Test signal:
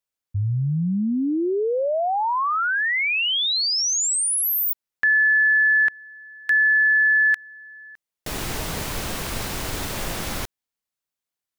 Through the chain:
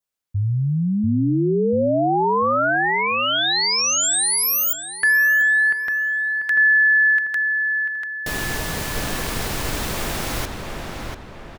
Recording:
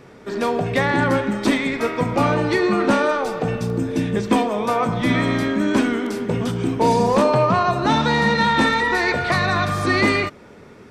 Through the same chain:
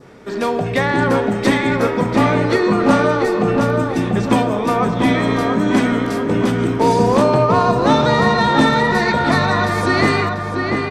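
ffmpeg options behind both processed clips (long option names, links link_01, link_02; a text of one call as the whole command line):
ffmpeg -i in.wav -filter_complex "[0:a]adynamicequalizer=threshold=0.0178:dfrequency=2400:dqfactor=1.9:tfrequency=2400:tqfactor=1.9:attack=5:release=100:ratio=0.375:range=2.5:mode=cutabove:tftype=bell,asplit=2[link_01][link_02];[link_02]adelay=691,lowpass=frequency=2800:poles=1,volume=-3.5dB,asplit=2[link_03][link_04];[link_04]adelay=691,lowpass=frequency=2800:poles=1,volume=0.45,asplit=2[link_05][link_06];[link_06]adelay=691,lowpass=frequency=2800:poles=1,volume=0.45,asplit=2[link_07][link_08];[link_08]adelay=691,lowpass=frequency=2800:poles=1,volume=0.45,asplit=2[link_09][link_10];[link_10]adelay=691,lowpass=frequency=2800:poles=1,volume=0.45,asplit=2[link_11][link_12];[link_12]adelay=691,lowpass=frequency=2800:poles=1,volume=0.45[link_13];[link_03][link_05][link_07][link_09][link_11][link_13]amix=inputs=6:normalize=0[link_14];[link_01][link_14]amix=inputs=2:normalize=0,volume=2dB" out.wav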